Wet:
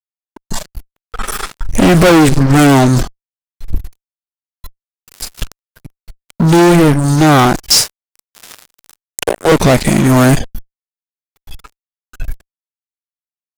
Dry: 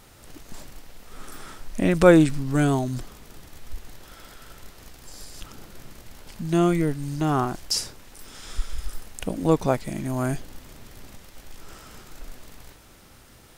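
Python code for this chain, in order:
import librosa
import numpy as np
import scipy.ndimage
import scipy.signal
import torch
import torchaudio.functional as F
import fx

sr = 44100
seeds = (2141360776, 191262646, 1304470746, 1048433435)

y = fx.noise_reduce_blind(x, sr, reduce_db=20)
y = fx.ellip_highpass(y, sr, hz=390.0, order=4, stop_db=80, at=(7.82, 9.52))
y = fx.fuzz(y, sr, gain_db=30.0, gate_db=-38.0)
y = y * 10.0 ** (8.0 / 20.0)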